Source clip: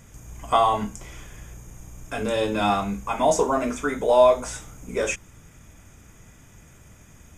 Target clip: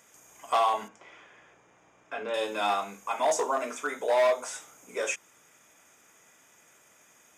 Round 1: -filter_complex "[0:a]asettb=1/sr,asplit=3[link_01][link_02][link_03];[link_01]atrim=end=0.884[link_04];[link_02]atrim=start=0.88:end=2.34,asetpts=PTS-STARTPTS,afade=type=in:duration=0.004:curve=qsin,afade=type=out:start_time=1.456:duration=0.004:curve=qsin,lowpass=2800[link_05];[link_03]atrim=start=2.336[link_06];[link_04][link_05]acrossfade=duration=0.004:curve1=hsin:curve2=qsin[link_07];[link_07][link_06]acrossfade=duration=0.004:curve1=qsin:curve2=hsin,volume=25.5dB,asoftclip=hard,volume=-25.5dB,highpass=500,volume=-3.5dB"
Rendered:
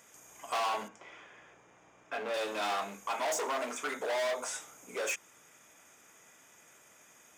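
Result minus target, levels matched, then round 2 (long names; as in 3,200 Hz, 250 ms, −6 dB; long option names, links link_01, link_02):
gain into a clipping stage and back: distortion +9 dB
-filter_complex "[0:a]asettb=1/sr,asplit=3[link_01][link_02][link_03];[link_01]atrim=end=0.884[link_04];[link_02]atrim=start=0.88:end=2.34,asetpts=PTS-STARTPTS,afade=type=in:duration=0.004:curve=qsin,afade=type=out:start_time=1.456:duration=0.004:curve=qsin,lowpass=2800[link_05];[link_03]atrim=start=2.336[link_06];[link_04][link_05]acrossfade=duration=0.004:curve1=hsin:curve2=qsin[link_07];[link_07][link_06]acrossfade=duration=0.004:curve1=qsin:curve2=hsin,volume=14.5dB,asoftclip=hard,volume=-14.5dB,highpass=500,volume=-3.5dB"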